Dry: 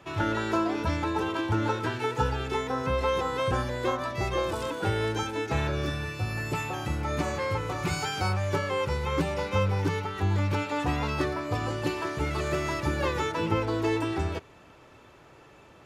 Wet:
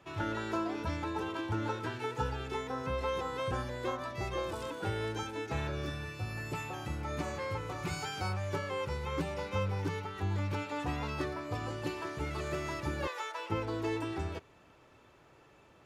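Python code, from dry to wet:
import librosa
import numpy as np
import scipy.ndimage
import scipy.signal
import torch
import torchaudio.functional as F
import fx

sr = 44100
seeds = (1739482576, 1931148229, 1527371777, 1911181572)

y = fx.highpass(x, sr, hz=570.0, slope=24, at=(13.07, 13.5))
y = y * 10.0 ** (-7.5 / 20.0)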